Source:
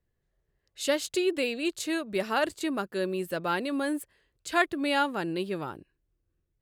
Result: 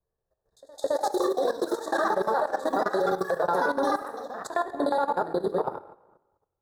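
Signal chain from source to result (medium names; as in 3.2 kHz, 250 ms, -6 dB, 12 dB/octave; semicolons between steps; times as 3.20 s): time reversed locally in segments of 60 ms; high-order bell 720 Hz +12 dB; ever faster or slower copies 392 ms, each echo +6 st, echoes 3, each echo -6 dB; compression 2:1, threshold -19 dBFS, peak gain reduction 5.5 dB; pre-echo 214 ms -20.5 dB; dynamic bell 430 Hz, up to +3 dB, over -38 dBFS, Q 3.1; elliptic band-stop 1.8–3.6 kHz, stop band 40 dB; plate-style reverb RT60 1 s, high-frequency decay 0.75×, DRR 2.5 dB; transient shaper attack -2 dB, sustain -8 dB; level held to a coarse grid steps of 12 dB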